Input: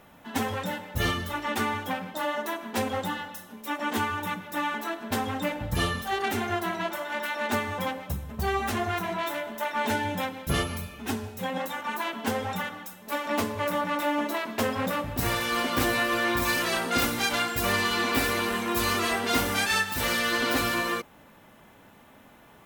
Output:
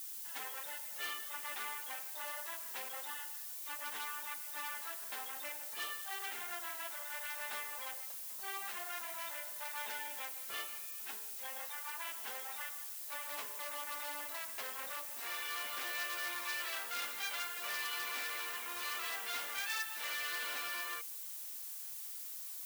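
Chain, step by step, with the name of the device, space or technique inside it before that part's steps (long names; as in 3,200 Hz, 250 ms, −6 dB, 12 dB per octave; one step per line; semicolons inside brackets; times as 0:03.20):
aircraft radio (band-pass filter 380–2,400 Hz; hard clipping −24.5 dBFS, distortion −16 dB; white noise bed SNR 18 dB)
first difference
level +1.5 dB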